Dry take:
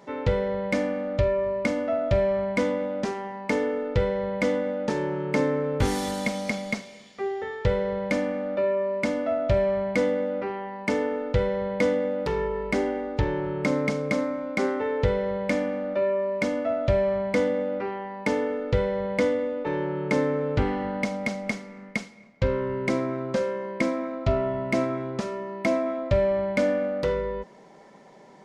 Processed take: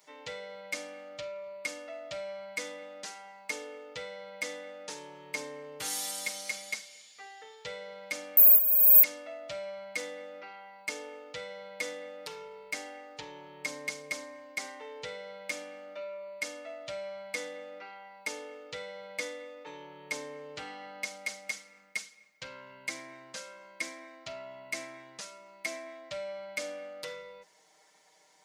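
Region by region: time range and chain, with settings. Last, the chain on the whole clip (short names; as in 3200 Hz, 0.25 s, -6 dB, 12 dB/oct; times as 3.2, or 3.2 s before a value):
8.37–9.03 resonant low shelf 130 Hz +13.5 dB, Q 1.5 + negative-ratio compressor -29 dBFS, ratio -0.5 + careless resampling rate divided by 3×, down filtered, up zero stuff
whole clip: differentiator; comb 6.5 ms, depth 93%; gain +1.5 dB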